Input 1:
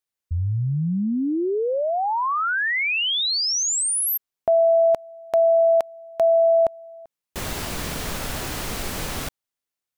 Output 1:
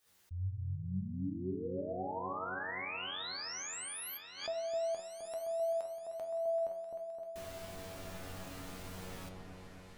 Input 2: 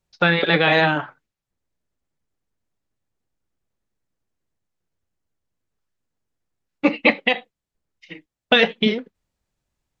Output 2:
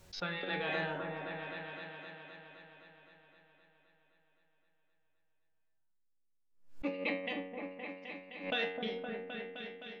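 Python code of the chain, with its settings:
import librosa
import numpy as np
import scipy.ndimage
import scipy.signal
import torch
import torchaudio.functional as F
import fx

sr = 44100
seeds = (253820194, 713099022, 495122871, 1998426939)

p1 = fx.comb_fb(x, sr, f0_hz=93.0, decay_s=0.76, harmonics='all', damping=0.4, mix_pct=90)
p2 = p1 + fx.echo_opening(p1, sr, ms=259, hz=750, octaves=1, feedback_pct=70, wet_db=-3, dry=0)
p3 = fx.pre_swell(p2, sr, db_per_s=110.0)
y = F.gain(torch.from_numpy(p3), -7.0).numpy()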